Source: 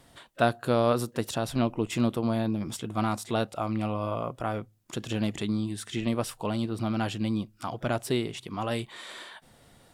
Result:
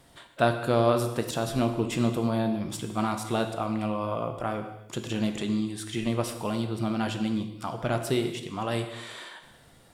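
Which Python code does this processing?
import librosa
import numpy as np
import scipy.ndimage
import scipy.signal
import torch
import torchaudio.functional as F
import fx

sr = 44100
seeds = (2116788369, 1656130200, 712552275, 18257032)

y = fx.rev_gated(x, sr, seeds[0], gate_ms=370, shape='falling', drr_db=5.5)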